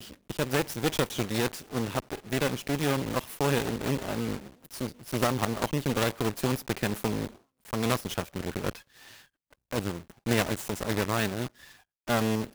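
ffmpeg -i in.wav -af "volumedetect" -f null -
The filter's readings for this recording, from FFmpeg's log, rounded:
mean_volume: -30.6 dB
max_volume: -10.8 dB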